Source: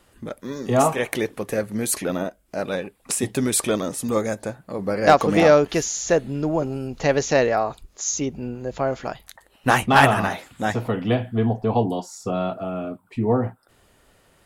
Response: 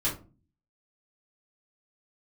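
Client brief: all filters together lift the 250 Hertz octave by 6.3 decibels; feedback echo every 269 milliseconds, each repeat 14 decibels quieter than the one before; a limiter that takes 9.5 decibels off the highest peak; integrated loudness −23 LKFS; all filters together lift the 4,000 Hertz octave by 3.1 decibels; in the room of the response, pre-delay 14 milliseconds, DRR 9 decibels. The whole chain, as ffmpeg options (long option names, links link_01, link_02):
-filter_complex "[0:a]equalizer=frequency=250:width_type=o:gain=7.5,equalizer=frequency=4000:width_type=o:gain=4,alimiter=limit=-10dB:level=0:latency=1,aecho=1:1:269|538:0.2|0.0399,asplit=2[link_01][link_02];[1:a]atrim=start_sample=2205,adelay=14[link_03];[link_02][link_03]afir=irnorm=-1:irlink=0,volume=-16.5dB[link_04];[link_01][link_04]amix=inputs=2:normalize=0,volume=-2dB"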